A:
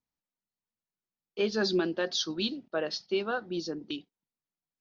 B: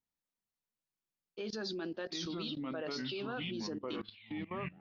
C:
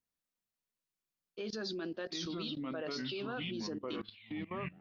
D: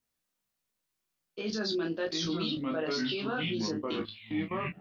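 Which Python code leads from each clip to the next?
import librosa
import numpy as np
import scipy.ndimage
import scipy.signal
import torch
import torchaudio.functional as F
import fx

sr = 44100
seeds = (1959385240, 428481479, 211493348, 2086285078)

y1 = fx.echo_pitch(x, sr, ms=380, semitones=-4, count=3, db_per_echo=-6.0)
y1 = fx.level_steps(y1, sr, step_db=19)
y1 = y1 * 10.0 ** (-1.0 / 20.0)
y2 = fx.notch(y1, sr, hz=850.0, q=12.0)
y3 = fx.room_early_taps(y2, sr, ms=(19, 36), db=(-4.0, -7.0))
y3 = y3 * 10.0 ** (5.0 / 20.0)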